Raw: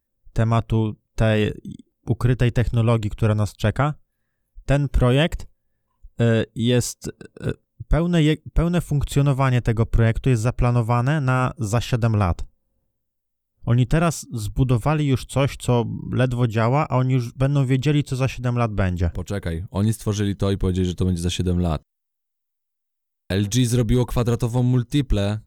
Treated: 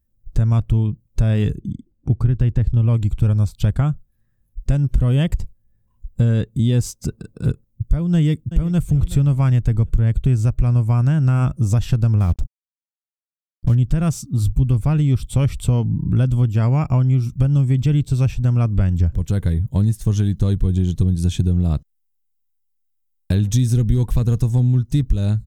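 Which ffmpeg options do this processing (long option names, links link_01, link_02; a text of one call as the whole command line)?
ffmpeg -i in.wav -filter_complex "[0:a]asettb=1/sr,asplit=3[link_01][link_02][link_03];[link_01]atrim=end=1.604[link_04];[link_02]atrim=start=1.6:end=2.94,asetpts=PTS-STARTPTS,afade=type=in:duration=0.004:curve=qsin,afade=type=out:start_time=1.336:duration=0.004:curve=qsin,lowpass=frequency=2900:poles=1[link_05];[link_03]atrim=start=2.936[link_06];[link_04][link_05]acrossfade=duration=0.004:curve1=hsin:curve2=qsin[link_07];[link_07][link_06]acrossfade=duration=0.004:curve1=qsin:curve2=hsin,asplit=2[link_08][link_09];[link_09]afade=type=in:start_time=8.14:duration=0.01,afade=type=out:start_time=8.8:duration=0.01,aecho=0:1:370|740|1110:0.141254|0.0494388|0.0173036[link_10];[link_08][link_10]amix=inputs=2:normalize=0,asettb=1/sr,asplit=3[link_11][link_12][link_13];[link_11]atrim=end=12.204[link_14];[link_12]atrim=start=12.2:end=13.75,asetpts=PTS-STARTPTS,afade=type=in:duration=0.004:curve=qsin,afade=type=out:start_time=1.546:duration=0.004:curve=qsin,acrusher=bits=5:mix=0:aa=0.5[link_15];[link_13]atrim=start=13.746[link_16];[link_14][link_15]acrossfade=duration=0.004:curve1=hsin:curve2=qsin[link_17];[link_17][link_16]acrossfade=duration=0.004:curve1=qsin:curve2=hsin,bass=frequency=250:gain=15,treble=frequency=4000:gain=4,acompressor=threshold=-11dB:ratio=4,volume=-3dB" out.wav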